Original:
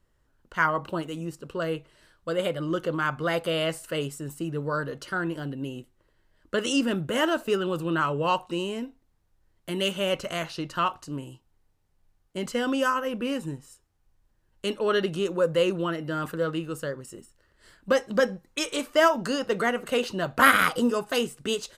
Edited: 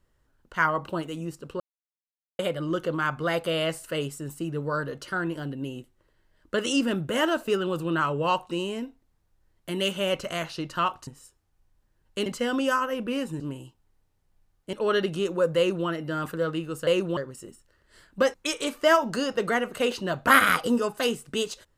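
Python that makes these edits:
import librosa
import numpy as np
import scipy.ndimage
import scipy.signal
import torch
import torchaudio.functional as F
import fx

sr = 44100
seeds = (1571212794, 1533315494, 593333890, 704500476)

y = fx.edit(x, sr, fx.silence(start_s=1.6, length_s=0.79),
    fx.swap(start_s=11.07, length_s=1.33, other_s=13.54, other_length_s=1.19),
    fx.duplicate(start_s=15.57, length_s=0.3, to_s=16.87),
    fx.cut(start_s=18.04, length_s=0.42), tone=tone)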